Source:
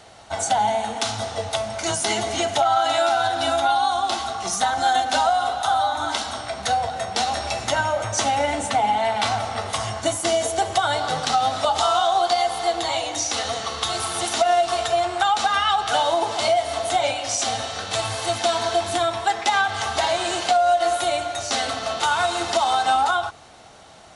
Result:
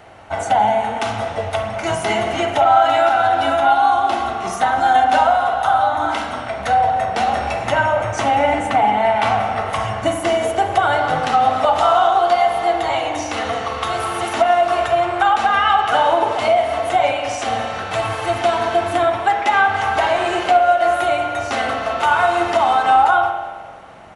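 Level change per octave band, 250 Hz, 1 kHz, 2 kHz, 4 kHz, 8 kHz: +6.0, +6.0, +5.5, −3.0, −8.0 decibels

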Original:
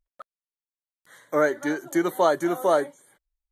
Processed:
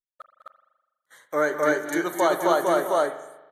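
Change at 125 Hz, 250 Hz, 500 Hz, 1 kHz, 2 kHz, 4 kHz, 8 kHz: −2.0, −1.5, +1.0, +2.5, +3.0, +3.0, +3.0 decibels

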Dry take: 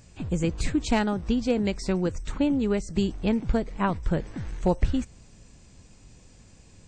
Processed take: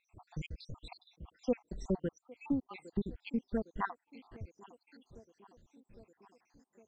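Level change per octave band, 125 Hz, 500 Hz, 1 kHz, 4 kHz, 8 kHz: −15.5 dB, −12.5 dB, −12.0 dB, −17.5 dB, below −20 dB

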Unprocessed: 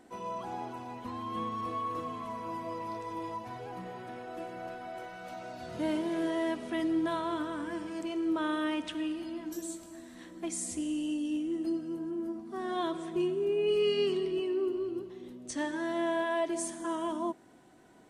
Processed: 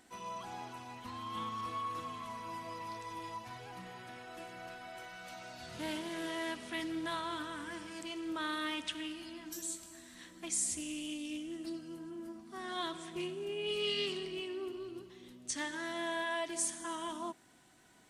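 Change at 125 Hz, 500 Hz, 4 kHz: −5.0, −9.5, +2.5 decibels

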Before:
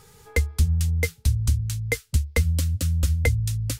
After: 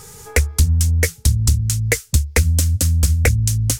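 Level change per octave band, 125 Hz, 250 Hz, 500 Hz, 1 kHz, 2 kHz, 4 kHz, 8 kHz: +6.5, +6.0, +6.0, +9.5, +6.0, +9.0, +12.5 decibels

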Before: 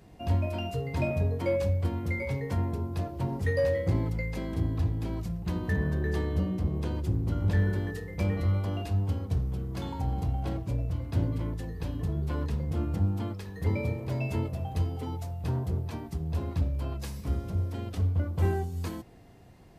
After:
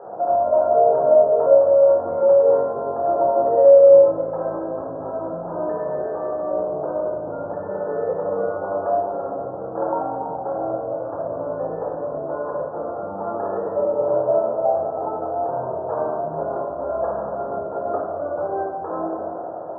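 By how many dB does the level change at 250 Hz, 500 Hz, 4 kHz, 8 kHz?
0.0 dB, +19.0 dB, below −35 dB, can't be measured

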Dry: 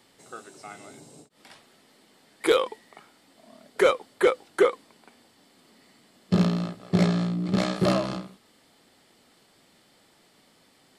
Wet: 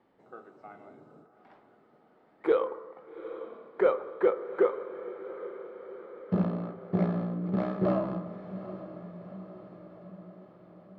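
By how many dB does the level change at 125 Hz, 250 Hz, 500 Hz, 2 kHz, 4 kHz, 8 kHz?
−6.0 dB, −4.5 dB, −3.0 dB, −11.0 dB, below −20 dB, below −35 dB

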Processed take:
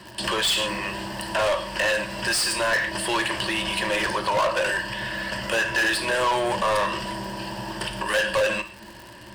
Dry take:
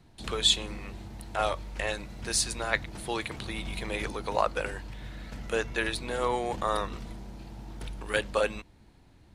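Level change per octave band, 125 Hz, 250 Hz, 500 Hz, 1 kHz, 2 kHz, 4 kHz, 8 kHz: +2.0, +6.5, +6.5, +7.5, +11.0, +5.5, +4.5 decibels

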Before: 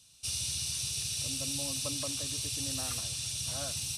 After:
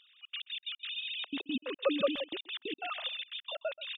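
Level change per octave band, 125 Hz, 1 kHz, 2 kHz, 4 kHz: −21.5, +6.0, +5.5, −2.0 decibels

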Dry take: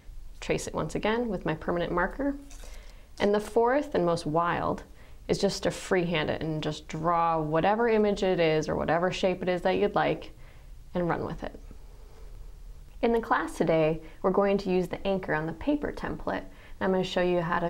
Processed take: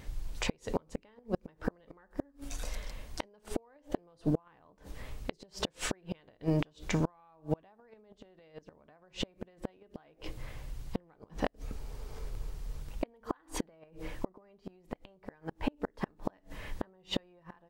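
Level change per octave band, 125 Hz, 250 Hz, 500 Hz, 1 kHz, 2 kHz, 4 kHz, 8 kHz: −6.0, −8.5, −15.0, −16.5, −13.0, −6.0, −3.0 decibels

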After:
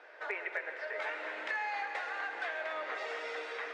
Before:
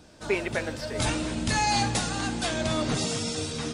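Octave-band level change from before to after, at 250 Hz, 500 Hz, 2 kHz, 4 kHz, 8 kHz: −28.0 dB, −10.0 dB, −2.5 dB, −18.0 dB, below −30 dB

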